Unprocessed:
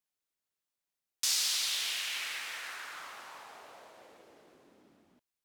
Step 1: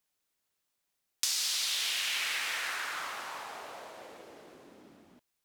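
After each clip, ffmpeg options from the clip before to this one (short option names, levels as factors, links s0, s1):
-af "acompressor=threshold=0.0158:ratio=6,volume=2.37"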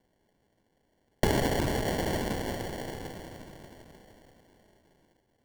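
-af "aderivative,acrusher=samples=35:mix=1:aa=0.000001,volume=2.24"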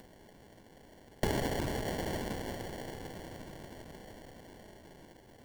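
-af "acompressor=mode=upward:threshold=0.0251:ratio=2.5,volume=0.501"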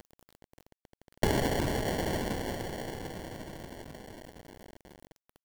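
-af "aeval=exprs='val(0)*gte(abs(val(0)),0.00376)':c=same,volume=1.68"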